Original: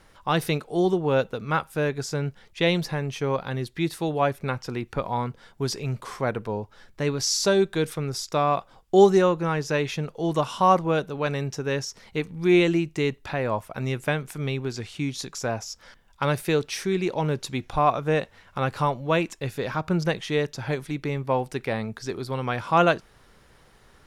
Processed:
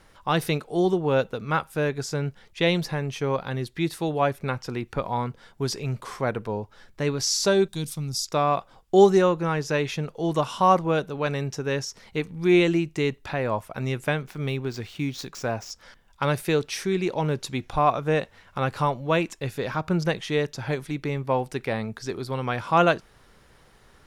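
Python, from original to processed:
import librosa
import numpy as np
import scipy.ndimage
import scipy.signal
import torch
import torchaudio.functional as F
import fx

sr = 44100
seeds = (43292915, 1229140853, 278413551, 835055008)

y = fx.curve_eq(x, sr, hz=(230.0, 450.0, 870.0, 1600.0, 4900.0), db=(0, -16, -8, -16, 4), at=(7.68, 8.25))
y = fx.median_filter(y, sr, points=5, at=(14.22, 15.71))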